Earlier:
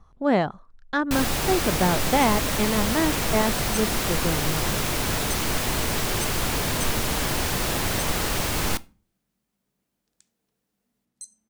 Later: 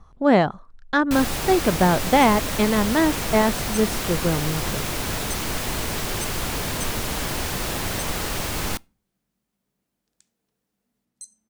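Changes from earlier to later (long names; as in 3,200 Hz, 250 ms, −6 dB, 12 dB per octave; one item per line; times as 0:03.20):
speech +4.5 dB
first sound: send −10.0 dB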